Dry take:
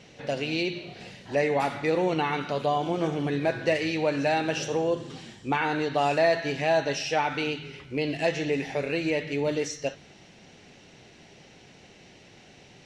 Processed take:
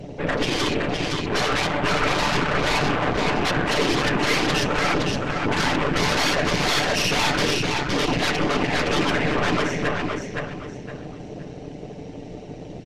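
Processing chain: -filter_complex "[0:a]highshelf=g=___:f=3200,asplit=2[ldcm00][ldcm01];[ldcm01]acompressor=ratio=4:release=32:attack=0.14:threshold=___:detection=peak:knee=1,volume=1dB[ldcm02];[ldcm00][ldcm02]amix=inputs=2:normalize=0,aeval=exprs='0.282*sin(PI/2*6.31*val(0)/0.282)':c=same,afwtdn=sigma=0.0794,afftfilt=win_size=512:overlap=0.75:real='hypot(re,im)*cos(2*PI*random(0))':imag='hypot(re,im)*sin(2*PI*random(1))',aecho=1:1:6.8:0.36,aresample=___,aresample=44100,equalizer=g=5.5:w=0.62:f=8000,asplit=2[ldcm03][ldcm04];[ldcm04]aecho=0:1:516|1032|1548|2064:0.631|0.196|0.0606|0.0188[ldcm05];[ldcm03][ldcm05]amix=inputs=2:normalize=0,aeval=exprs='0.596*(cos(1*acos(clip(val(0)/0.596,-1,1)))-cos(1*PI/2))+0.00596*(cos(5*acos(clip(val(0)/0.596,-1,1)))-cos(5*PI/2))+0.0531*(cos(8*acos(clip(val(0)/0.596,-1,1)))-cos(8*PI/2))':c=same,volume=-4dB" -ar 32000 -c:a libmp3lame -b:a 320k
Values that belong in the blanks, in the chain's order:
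-7, -41dB, 22050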